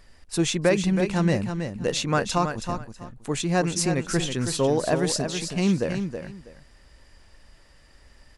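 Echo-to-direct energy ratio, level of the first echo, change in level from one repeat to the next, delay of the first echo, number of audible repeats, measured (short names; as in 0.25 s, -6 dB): -7.5 dB, -7.5 dB, -13.5 dB, 0.323 s, 2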